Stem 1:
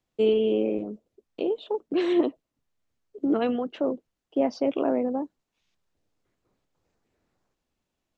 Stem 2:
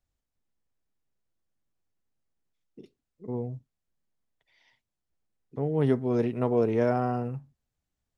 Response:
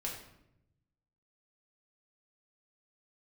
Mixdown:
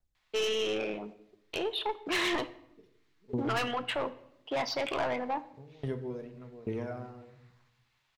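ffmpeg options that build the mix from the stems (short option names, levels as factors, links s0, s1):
-filter_complex "[0:a]equalizer=f=125:t=o:w=1:g=-5,equalizer=f=250:t=o:w=1:g=-10,equalizer=f=500:t=o:w=1:g=-5,equalizer=f=1000:t=o:w=1:g=9,equalizer=f=2000:t=o:w=1:g=12,equalizer=f=4000:t=o:w=1:g=10,asoftclip=type=tanh:threshold=0.0501,adelay=150,volume=0.841,asplit=2[s0][s1];[s1]volume=0.316[s2];[1:a]acompressor=threshold=0.0562:ratio=5,aphaser=in_gain=1:out_gain=1:delay=2.5:decay=0.48:speed=0.91:type=triangular,aeval=exprs='val(0)*pow(10,-27*if(lt(mod(1.2*n/s,1),2*abs(1.2)/1000),1-mod(1.2*n/s,1)/(2*abs(1.2)/1000),(mod(1.2*n/s,1)-2*abs(1.2)/1000)/(1-2*abs(1.2)/1000))/20)':c=same,volume=0.531,asplit=2[s3][s4];[s4]volume=0.668[s5];[2:a]atrim=start_sample=2205[s6];[s2][s5]amix=inputs=2:normalize=0[s7];[s7][s6]afir=irnorm=-1:irlink=0[s8];[s0][s3][s8]amix=inputs=3:normalize=0"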